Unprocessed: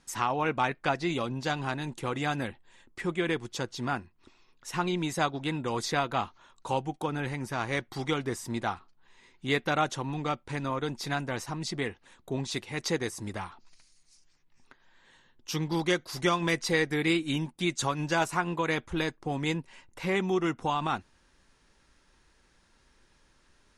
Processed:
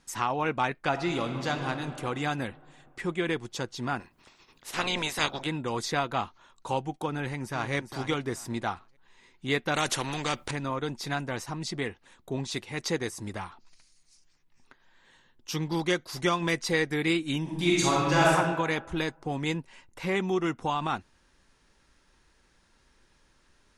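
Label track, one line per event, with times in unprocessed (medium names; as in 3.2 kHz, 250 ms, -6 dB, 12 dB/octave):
0.880000	1.680000	reverb throw, RT60 2.9 s, DRR 5.5 dB
3.990000	5.450000	spectral peaks clipped ceiling under each frame's peak by 22 dB
7.130000	7.730000	echo throw 410 ms, feedback 20%, level -8.5 dB
9.740000	10.510000	spectrum-flattening compressor 2:1
17.420000	18.310000	reverb throw, RT60 1.4 s, DRR -5 dB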